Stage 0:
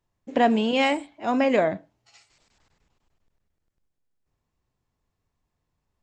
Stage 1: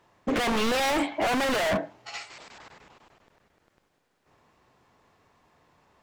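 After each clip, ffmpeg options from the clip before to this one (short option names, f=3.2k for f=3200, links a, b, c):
-filter_complex "[0:a]asplit=2[a][b];[b]highpass=f=720:p=1,volume=35dB,asoftclip=type=tanh:threshold=-8.5dB[c];[a][c]amix=inputs=2:normalize=0,lowpass=f=1.5k:p=1,volume=-6dB,aeval=exprs='0.141*(abs(mod(val(0)/0.141+3,4)-2)-1)':c=same,volume=-3.5dB"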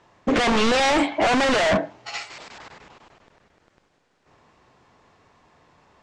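-af "lowpass=f=7.9k:w=0.5412,lowpass=f=7.9k:w=1.3066,volume=6dB"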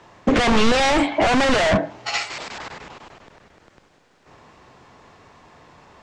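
-filter_complex "[0:a]acrossover=split=150[a][b];[b]acompressor=threshold=-27dB:ratio=2.5[c];[a][c]amix=inputs=2:normalize=0,volume=8.5dB"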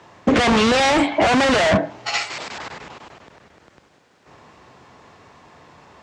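-af "highpass=61,volume=1.5dB"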